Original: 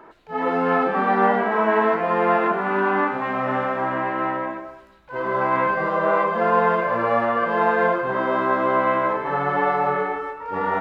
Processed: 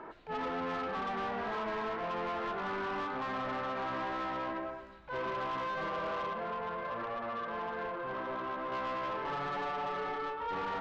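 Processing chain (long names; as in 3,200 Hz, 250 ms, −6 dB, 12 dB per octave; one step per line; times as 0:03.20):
dynamic equaliser 1,200 Hz, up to +4 dB, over −36 dBFS, Q 3.1
downward compressor 5 to 1, threshold −28 dBFS, peak gain reduction 14 dB
0:06.33–0:08.72: flanger 1.4 Hz, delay 8.8 ms, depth 8.5 ms, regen −78%
soft clipping −32.5 dBFS, distortion −9 dB
high-frequency loss of the air 110 metres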